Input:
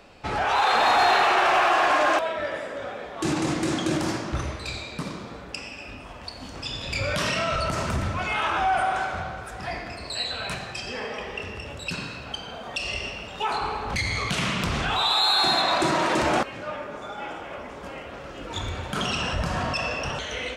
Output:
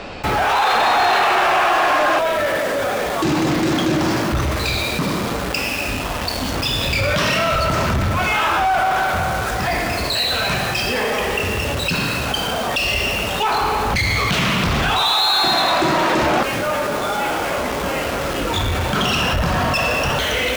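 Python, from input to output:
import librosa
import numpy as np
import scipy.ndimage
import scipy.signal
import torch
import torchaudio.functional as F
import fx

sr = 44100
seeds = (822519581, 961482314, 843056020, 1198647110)

p1 = scipy.signal.sosfilt(scipy.signal.butter(2, 5700.0, 'lowpass', fs=sr, output='sos'), x)
p2 = fx.quant_companded(p1, sr, bits=2)
p3 = p1 + (p2 * 10.0 ** (-6.0 / 20.0))
p4 = fx.env_flatten(p3, sr, amount_pct=50)
y = p4 * 10.0 ** (1.5 / 20.0)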